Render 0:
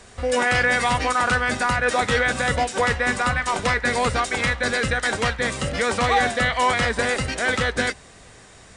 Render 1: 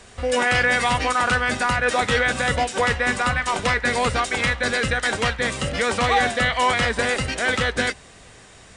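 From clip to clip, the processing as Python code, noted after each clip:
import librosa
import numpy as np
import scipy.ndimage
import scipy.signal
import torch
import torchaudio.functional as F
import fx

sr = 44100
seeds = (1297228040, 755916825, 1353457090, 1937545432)

y = fx.peak_eq(x, sr, hz=2900.0, db=3.0, octaves=0.59)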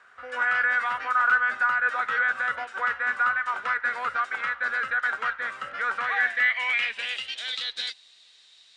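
y = fx.filter_sweep_bandpass(x, sr, from_hz=1400.0, to_hz=3900.0, start_s=5.91, end_s=7.56, q=5.5)
y = y * librosa.db_to_amplitude(4.0)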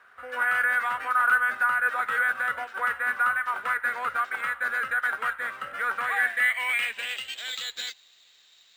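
y = np.interp(np.arange(len(x)), np.arange(len(x))[::4], x[::4])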